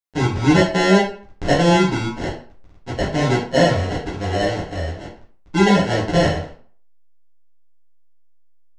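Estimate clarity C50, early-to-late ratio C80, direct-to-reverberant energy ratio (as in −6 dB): 6.5 dB, 10.5 dB, −7.0 dB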